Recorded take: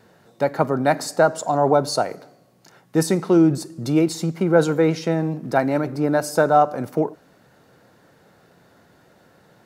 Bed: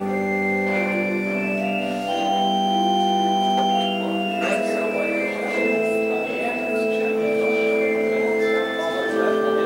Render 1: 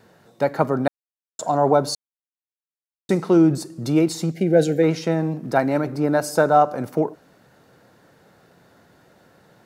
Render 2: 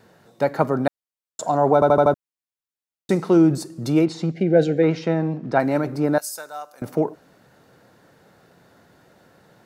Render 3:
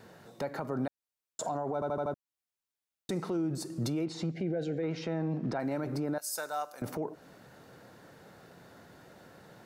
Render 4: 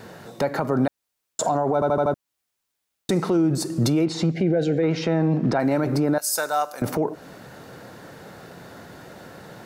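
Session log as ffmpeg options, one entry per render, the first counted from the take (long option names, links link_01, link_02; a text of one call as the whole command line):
ffmpeg -i in.wav -filter_complex "[0:a]asplit=3[link_01][link_02][link_03];[link_01]afade=type=out:start_time=4.32:duration=0.02[link_04];[link_02]asuperstop=centerf=1100:order=8:qfactor=1.3,afade=type=in:start_time=4.32:duration=0.02,afade=type=out:start_time=4.82:duration=0.02[link_05];[link_03]afade=type=in:start_time=4.82:duration=0.02[link_06];[link_04][link_05][link_06]amix=inputs=3:normalize=0,asplit=5[link_07][link_08][link_09][link_10][link_11];[link_07]atrim=end=0.88,asetpts=PTS-STARTPTS,afade=type=out:start_time=0.876:duration=0.004:curve=hsin[link_12];[link_08]atrim=start=0.88:end=1.39,asetpts=PTS-STARTPTS,volume=0[link_13];[link_09]atrim=start=1.39:end=1.95,asetpts=PTS-STARTPTS,afade=type=in:duration=0.004:curve=hsin,afade=type=out:start_time=0.556:duration=0.004:curve=hsin[link_14];[link_10]atrim=start=1.95:end=3.09,asetpts=PTS-STARTPTS,volume=0[link_15];[link_11]atrim=start=3.09,asetpts=PTS-STARTPTS,afade=type=in:duration=0.004:curve=hsin[link_16];[link_12][link_13][link_14][link_15][link_16]concat=n=5:v=0:a=1" out.wav
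ffmpeg -i in.wav -filter_complex "[0:a]asettb=1/sr,asplit=3[link_01][link_02][link_03];[link_01]atrim=end=4.054[link_04];[link_02]atrim=start=4.05:end=5.6,asetpts=PTS-STARTPTS,afade=type=in:duration=0.004:curve=qsin,afade=type=out:start_time=1.546:duration=0.004:curve=qsin,lowpass=4000[link_05];[link_03]atrim=start=5.596[link_06];[link_04][link_05]acrossfade=duration=0.004:curve1=hsin:curve2=qsin[link_07];[link_07][link_06]acrossfade=duration=0.004:curve1=qsin:curve2=hsin,asettb=1/sr,asplit=3[link_08][link_09][link_10];[link_08]atrim=end=6.184[link_11];[link_09]atrim=start=6.18:end=6.82,asetpts=PTS-STARTPTS,afade=type=in:duration=0.004:curve=qsin,afade=type=out:start_time=0.636:duration=0.004:curve=qsin,aderivative[link_12];[link_10]atrim=start=6.816[link_13];[link_11][link_12]acrossfade=duration=0.004:curve1=hsin:curve2=qsin[link_14];[link_14][link_13]acrossfade=duration=0.004:curve1=qsin:curve2=hsin,asplit=6[link_15][link_16][link_17][link_18][link_19][link_20];[link_15]atrim=end=1.822[link_21];[link_16]atrim=start=1.738:end=1.822[link_22];[link_17]atrim=start=1.738:end=1.822[link_23];[link_18]atrim=start=1.738:end=1.822[link_24];[link_19]atrim=start=1.738:end=1.822[link_25];[link_20]atrim=start=2.138[link_26];[link_21][link_22]acrossfade=duration=0.004:curve1=hsin:curve2=hsin[link_27];[link_27][link_23]acrossfade=duration=0.004:curve1=hsin:curve2=hsin[link_28];[link_28][link_24]acrossfade=duration=0.004:curve1=hsin:curve2=hsin[link_29];[link_29][link_25]acrossfade=duration=0.004:curve1=hsin:curve2=hsin[link_30];[link_30][link_26]acrossfade=duration=0.004:curve1=hsin:curve2=hsin" out.wav
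ffmpeg -i in.wav -af "acompressor=threshold=-26dB:ratio=8,alimiter=level_in=1dB:limit=-24dB:level=0:latency=1:release=30,volume=-1dB" out.wav
ffmpeg -i in.wav -af "volume=12dB" out.wav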